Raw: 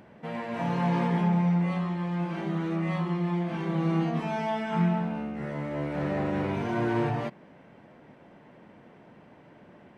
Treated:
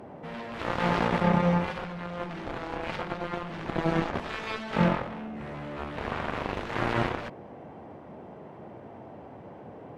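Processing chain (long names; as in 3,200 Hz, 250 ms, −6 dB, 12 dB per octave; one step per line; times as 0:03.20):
noise in a band 80–810 Hz −45 dBFS
harmonic generator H 3 −24 dB, 7 −13 dB, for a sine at −13.5 dBFS
level +2 dB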